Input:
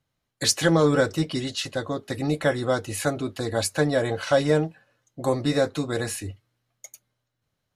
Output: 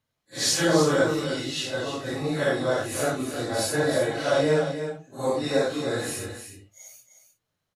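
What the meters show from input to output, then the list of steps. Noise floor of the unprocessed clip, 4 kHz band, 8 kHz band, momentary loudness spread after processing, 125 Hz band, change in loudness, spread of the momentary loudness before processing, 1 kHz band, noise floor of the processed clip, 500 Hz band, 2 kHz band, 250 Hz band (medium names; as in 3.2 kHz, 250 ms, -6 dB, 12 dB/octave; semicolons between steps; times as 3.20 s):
-80 dBFS, +0.5 dB, +0.5 dB, 12 LU, -4.0 dB, -0.5 dB, 11 LU, 0.0 dB, -81 dBFS, 0.0 dB, +0.5 dB, -2.0 dB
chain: phase randomisation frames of 200 ms; bass shelf 170 Hz -6.5 dB; on a send: delay 307 ms -9 dB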